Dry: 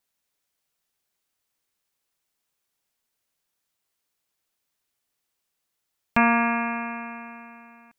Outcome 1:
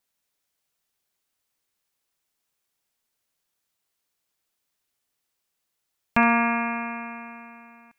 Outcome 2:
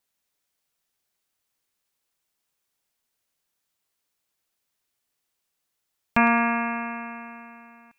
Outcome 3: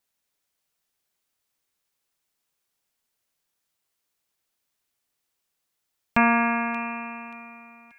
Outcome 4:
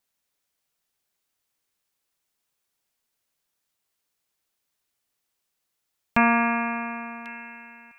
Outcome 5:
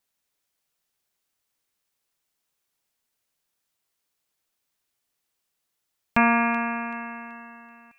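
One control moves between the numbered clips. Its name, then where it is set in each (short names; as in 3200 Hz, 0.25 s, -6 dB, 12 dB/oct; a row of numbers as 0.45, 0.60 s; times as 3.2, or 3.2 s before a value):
thin delay, time: 67, 108, 581, 1094, 381 ms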